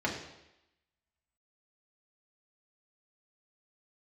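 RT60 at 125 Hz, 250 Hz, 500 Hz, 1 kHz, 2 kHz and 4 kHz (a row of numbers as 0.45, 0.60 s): 0.80, 0.85, 0.90, 0.90, 0.90, 0.90 s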